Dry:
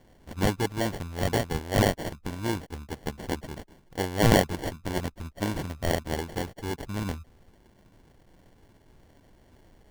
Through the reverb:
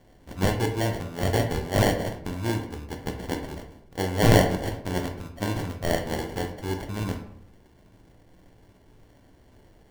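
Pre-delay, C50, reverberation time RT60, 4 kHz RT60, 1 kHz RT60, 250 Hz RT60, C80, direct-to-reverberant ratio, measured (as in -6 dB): 11 ms, 8.5 dB, 0.65 s, 0.40 s, 0.65 s, 0.90 s, 11.5 dB, 3.5 dB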